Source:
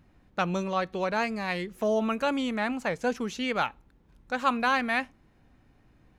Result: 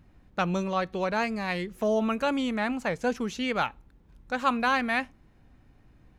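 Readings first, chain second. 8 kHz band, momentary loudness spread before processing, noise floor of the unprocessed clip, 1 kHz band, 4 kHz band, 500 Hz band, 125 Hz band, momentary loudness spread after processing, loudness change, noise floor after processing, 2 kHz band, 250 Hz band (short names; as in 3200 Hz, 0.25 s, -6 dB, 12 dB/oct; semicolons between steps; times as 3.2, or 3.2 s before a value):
0.0 dB, 6 LU, -62 dBFS, 0.0 dB, 0.0 dB, +0.5 dB, +2.0 dB, 6 LU, +0.5 dB, -59 dBFS, 0.0 dB, +1.5 dB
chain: low shelf 130 Hz +5.5 dB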